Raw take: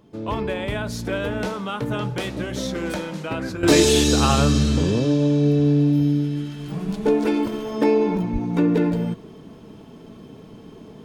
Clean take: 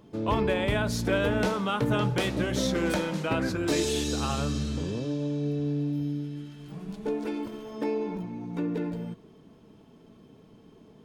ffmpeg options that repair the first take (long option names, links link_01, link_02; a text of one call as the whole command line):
ffmpeg -i in.wav -filter_complex "[0:a]asplit=3[link_01][link_02][link_03];[link_01]afade=type=out:start_time=8.32:duration=0.02[link_04];[link_02]highpass=frequency=140:width=0.5412,highpass=frequency=140:width=1.3066,afade=type=in:start_time=8.32:duration=0.02,afade=type=out:start_time=8.44:duration=0.02[link_05];[link_03]afade=type=in:start_time=8.44:duration=0.02[link_06];[link_04][link_05][link_06]amix=inputs=3:normalize=0,asetnsamples=nb_out_samples=441:pad=0,asendcmd='3.63 volume volume -11.5dB',volume=0dB" out.wav